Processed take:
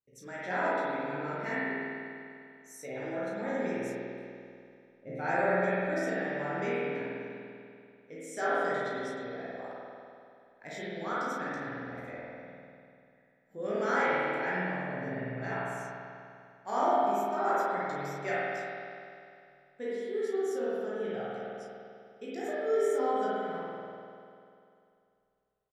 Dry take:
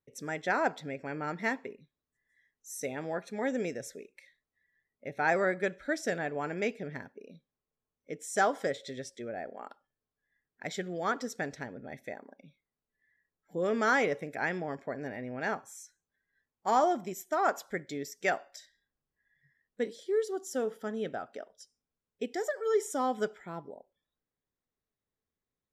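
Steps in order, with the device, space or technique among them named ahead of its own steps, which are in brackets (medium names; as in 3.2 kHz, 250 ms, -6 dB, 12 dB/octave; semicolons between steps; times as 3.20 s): 3.95–5.15 s: tilt shelf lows +8 dB, about 790 Hz; double-tracked vocal (doubling 34 ms -5 dB; chorus 0.33 Hz, delay 15.5 ms, depth 4.3 ms); spring tank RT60 2.5 s, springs 49 ms, chirp 70 ms, DRR -7.5 dB; trim -6 dB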